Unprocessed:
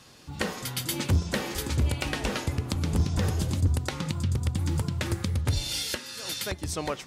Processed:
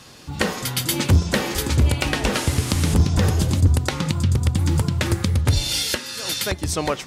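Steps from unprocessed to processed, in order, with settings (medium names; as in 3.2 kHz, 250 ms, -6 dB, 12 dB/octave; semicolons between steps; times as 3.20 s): 2.33–2.93 s: band noise 1–11 kHz -40 dBFS; trim +8 dB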